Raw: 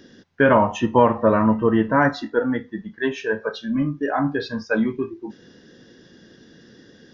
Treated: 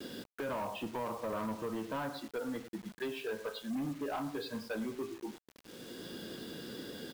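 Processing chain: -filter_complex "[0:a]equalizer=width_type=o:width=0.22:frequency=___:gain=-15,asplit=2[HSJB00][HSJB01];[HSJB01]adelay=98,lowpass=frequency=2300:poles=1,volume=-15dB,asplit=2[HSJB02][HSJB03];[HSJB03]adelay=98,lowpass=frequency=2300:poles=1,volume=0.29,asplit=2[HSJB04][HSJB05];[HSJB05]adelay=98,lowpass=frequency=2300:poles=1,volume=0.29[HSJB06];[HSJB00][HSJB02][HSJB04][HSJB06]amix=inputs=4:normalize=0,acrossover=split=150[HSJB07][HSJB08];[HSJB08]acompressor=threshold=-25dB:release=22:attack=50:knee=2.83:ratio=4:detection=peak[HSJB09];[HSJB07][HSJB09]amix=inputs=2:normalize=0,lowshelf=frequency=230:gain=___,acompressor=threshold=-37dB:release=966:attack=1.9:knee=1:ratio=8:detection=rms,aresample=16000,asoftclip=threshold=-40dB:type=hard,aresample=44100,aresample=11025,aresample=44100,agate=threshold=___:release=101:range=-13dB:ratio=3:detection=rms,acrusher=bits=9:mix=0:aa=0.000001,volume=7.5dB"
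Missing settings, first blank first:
1800, -9.5, -55dB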